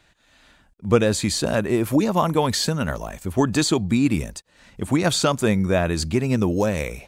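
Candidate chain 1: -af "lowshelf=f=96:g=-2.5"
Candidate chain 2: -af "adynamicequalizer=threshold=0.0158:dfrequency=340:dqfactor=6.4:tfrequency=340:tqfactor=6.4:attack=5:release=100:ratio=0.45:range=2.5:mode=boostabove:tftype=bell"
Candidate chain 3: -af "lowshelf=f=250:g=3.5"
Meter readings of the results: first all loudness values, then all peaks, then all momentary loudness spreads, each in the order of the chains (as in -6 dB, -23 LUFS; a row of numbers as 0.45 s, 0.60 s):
-21.5 LUFS, -20.5 LUFS, -20.0 LUFS; -4.5 dBFS, -3.5 dBFS, -2.0 dBFS; 8 LU, 8 LU, 7 LU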